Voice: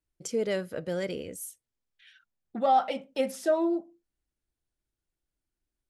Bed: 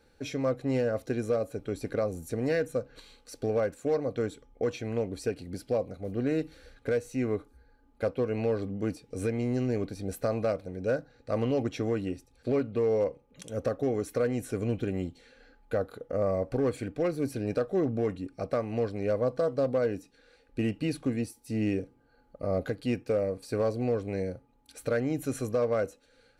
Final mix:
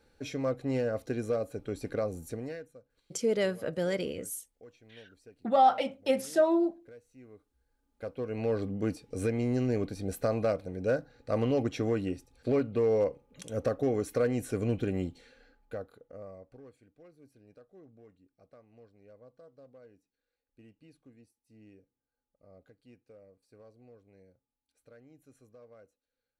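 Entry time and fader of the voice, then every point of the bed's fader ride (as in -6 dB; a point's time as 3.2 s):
2.90 s, +1.0 dB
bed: 2.28 s -2.5 dB
2.79 s -23.5 dB
7.32 s -23.5 dB
8.58 s 0 dB
15.2 s 0 dB
16.81 s -27.5 dB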